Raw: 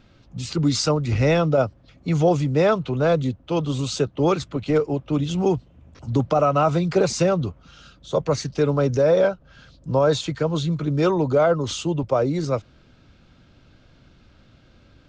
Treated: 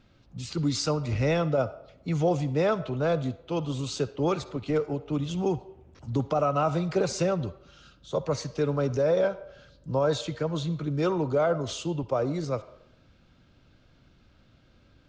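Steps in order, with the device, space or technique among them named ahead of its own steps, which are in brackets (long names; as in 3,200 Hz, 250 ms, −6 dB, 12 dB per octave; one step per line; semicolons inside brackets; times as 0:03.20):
filtered reverb send (on a send: high-pass filter 480 Hz 12 dB per octave + low-pass filter 6,500 Hz + convolution reverb RT60 0.85 s, pre-delay 48 ms, DRR 14.5 dB)
on the sum: level −6.5 dB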